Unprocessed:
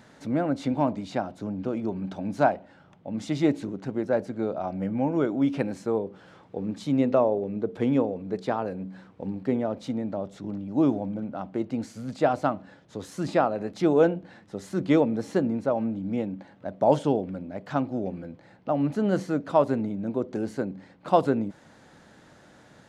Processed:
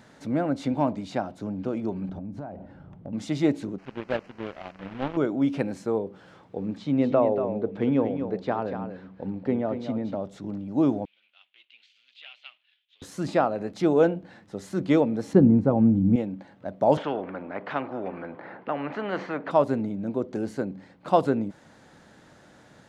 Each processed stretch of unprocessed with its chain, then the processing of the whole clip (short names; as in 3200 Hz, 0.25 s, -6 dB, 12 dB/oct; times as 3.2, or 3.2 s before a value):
2.09–3.13 tilt -4 dB/oct + compressor 16:1, threshold -32 dBFS
3.78–5.17 delta modulation 16 kbps, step -27 dBFS + power-law curve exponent 2
6.77–10.15 LPF 3800 Hz + echo 0.235 s -8.5 dB
11.05–13.02 sample leveller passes 1 + Butterworth band-pass 3000 Hz, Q 2.7
15.33–16.16 HPF 46 Hz + tilt -4.5 dB/oct + notch 610 Hz, Q 6.2
16.97–19.51 Butterworth band-pass 720 Hz, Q 0.5 + air absorption 53 m + spectral compressor 2:1
whole clip: dry